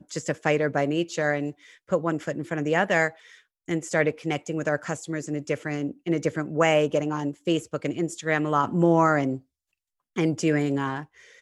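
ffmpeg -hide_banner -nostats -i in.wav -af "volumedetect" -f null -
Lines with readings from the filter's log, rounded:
mean_volume: -25.9 dB
max_volume: -7.4 dB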